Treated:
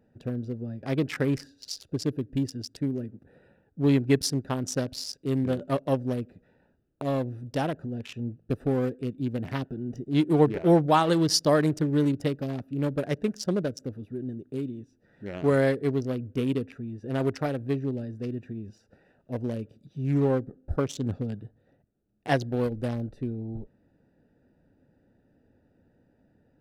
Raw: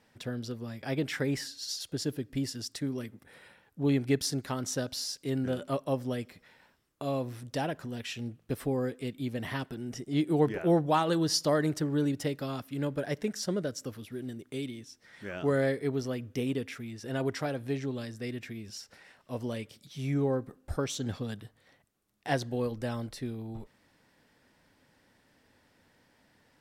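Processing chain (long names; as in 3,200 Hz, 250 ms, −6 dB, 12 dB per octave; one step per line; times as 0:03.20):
adaptive Wiener filter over 41 samples
level +5.5 dB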